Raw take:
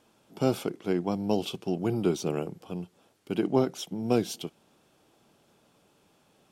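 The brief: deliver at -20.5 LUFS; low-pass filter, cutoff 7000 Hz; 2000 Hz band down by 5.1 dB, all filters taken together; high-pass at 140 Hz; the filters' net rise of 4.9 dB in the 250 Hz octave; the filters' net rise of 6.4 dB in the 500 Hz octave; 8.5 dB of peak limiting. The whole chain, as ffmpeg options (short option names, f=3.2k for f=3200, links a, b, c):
-af "highpass=140,lowpass=7k,equalizer=f=250:t=o:g=4.5,equalizer=f=500:t=o:g=7,equalizer=f=2k:t=o:g=-8,volume=8dB,alimiter=limit=-7dB:level=0:latency=1"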